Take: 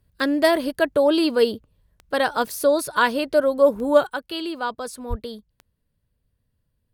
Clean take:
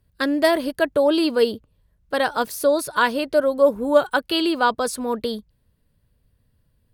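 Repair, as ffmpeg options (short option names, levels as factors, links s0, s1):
-filter_complex "[0:a]adeclick=t=4,asplit=3[s0][s1][s2];[s0]afade=t=out:st=5.09:d=0.02[s3];[s1]highpass=f=140:w=0.5412,highpass=f=140:w=1.3066,afade=t=in:st=5.09:d=0.02,afade=t=out:st=5.21:d=0.02[s4];[s2]afade=t=in:st=5.21:d=0.02[s5];[s3][s4][s5]amix=inputs=3:normalize=0,asetnsamples=n=441:p=0,asendcmd='4.07 volume volume 8dB',volume=1"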